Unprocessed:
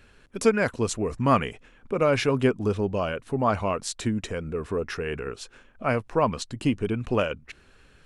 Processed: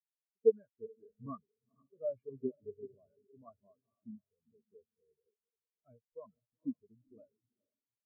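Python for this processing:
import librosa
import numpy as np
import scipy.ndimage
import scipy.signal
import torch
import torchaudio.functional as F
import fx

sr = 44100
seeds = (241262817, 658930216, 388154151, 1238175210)

y = fx.notch(x, sr, hz=530.0, q=17.0)
y = fx.echo_diffused(y, sr, ms=462, feedback_pct=52, wet_db=-5.5)
y = fx.spectral_expand(y, sr, expansion=4.0)
y = y * librosa.db_to_amplitude(-7.5)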